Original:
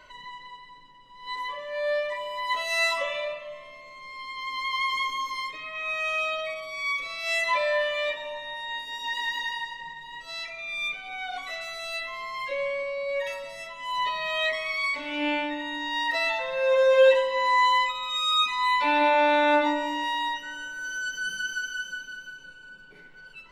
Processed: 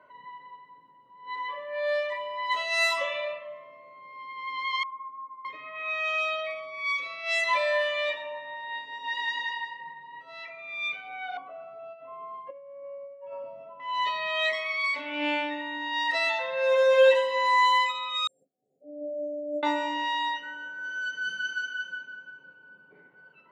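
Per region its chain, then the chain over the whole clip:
4.83–5.45 ladder low-pass 1100 Hz, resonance 65% + bell 770 Hz -8.5 dB 1.7 oct
11.37–13.8 negative-ratio compressor -34 dBFS, ratio -0.5 + running mean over 23 samples
18.27–19.63 expander -15 dBFS + brick-wall FIR band-stop 790–6400 Hz
whole clip: low-pass opened by the level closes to 990 Hz, open at -20.5 dBFS; HPF 100 Hz 24 dB/oct; low shelf 190 Hz -10 dB

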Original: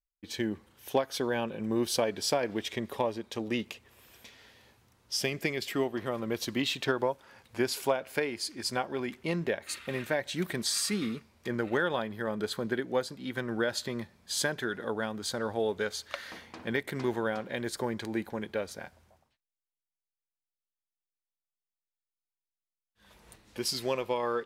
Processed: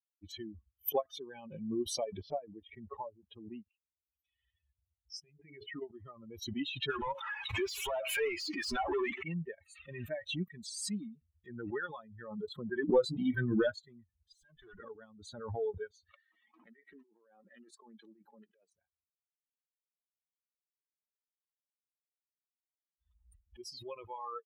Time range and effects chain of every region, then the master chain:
2.2–3.73 HPF 46 Hz + air absorption 400 m
5.2–5.82 LPF 2100 Hz + notches 60/120/180/240/300/360/420 Hz + compressor 4:1, threshold -36 dBFS
6.9–9.23 overdrive pedal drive 37 dB, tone 5400 Hz, clips at -14 dBFS + compressor 4:1, threshold -26 dBFS
12.89–13.72 sample leveller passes 2 + doubler 24 ms -7 dB
14.32–14.8 HPF 70 Hz + tube stage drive 38 dB, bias 0.7
16.16–18.73 HPF 190 Hz 24 dB/oct + negative-ratio compressor -36 dBFS + Doppler distortion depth 0.29 ms
whole clip: per-bin expansion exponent 3; LPF 2100 Hz 6 dB/oct; backwards sustainer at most 52 dB/s

